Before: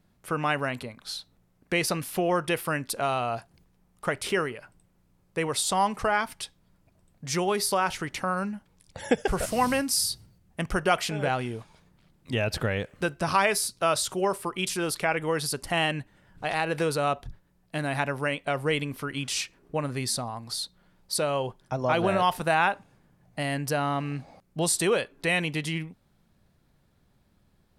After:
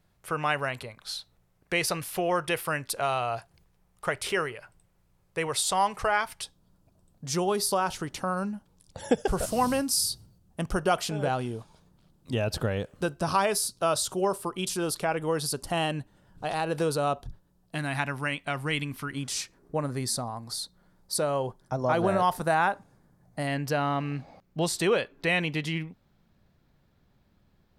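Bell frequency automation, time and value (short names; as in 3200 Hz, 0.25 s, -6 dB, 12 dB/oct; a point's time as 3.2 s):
bell -10 dB 0.82 oct
240 Hz
from 6.43 s 2100 Hz
from 17.75 s 500 Hz
from 19.12 s 2700 Hz
from 23.47 s 9700 Hz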